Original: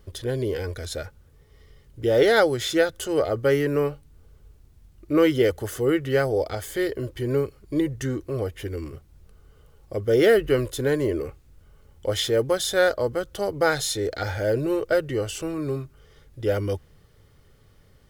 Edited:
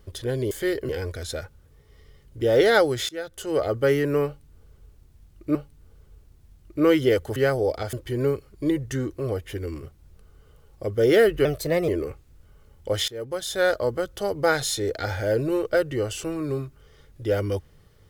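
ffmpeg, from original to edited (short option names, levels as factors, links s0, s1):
-filter_complex "[0:a]asplit=10[s0][s1][s2][s3][s4][s5][s6][s7][s8][s9];[s0]atrim=end=0.512[s10];[s1]atrim=start=6.648:end=7.032[s11];[s2]atrim=start=0.508:end=2.71,asetpts=PTS-STARTPTS,afade=t=out:st=2.198:d=0.004:c=hsin:silence=0.0707946[s12];[s3]atrim=start=2.71:end=5.172,asetpts=PTS-STARTPTS,afade=t=in:d=0.56:silence=0.0707946[s13];[s4]atrim=start=3.878:end=5.692[s14];[s5]atrim=start=6.078:end=6.652[s15];[s6]atrim=start=7.028:end=10.554[s16];[s7]atrim=start=10.55:end=11.06,asetpts=PTS-STARTPTS,asetrate=52038,aresample=44100,atrim=end_sample=19060,asetpts=PTS-STARTPTS[s17];[s8]atrim=start=11.056:end=12.26,asetpts=PTS-STARTPTS,afade=t=out:st=1.2:d=0.004:c=hsin:silence=0.112202[s18];[s9]atrim=start=12.26,asetpts=PTS-STARTPTS,afade=t=in:d=0.71:silence=0.112202[s19];[s10][s11]acrossfade=d=0.004:c1=hsin:c2=hsin[s20];[s12][s13]concat=n=2:v=0:a=1[s21];[s20][s21]acrossfade=d=0.004:c1=hsin:c2=hsin[s22];[s22][s14]acrossfade=d=0.004:c1=hsin:c2=hsin[s23];[s23][s15]acrossfade=d=0.004:c1=hsin:c2=hsin[s24];[s24][s16]acrossfade=d=0.004:c1=hsin:c2=hsin[s25];[s25][s17]acrossfade=d=0.004:c1=hsin:c2=hsin[s26];[s18][s19]concat=n=2:v=0:a=1[s27];[s26][s27]acrossfade=d=0.004:c1=hsin:c2=hsin"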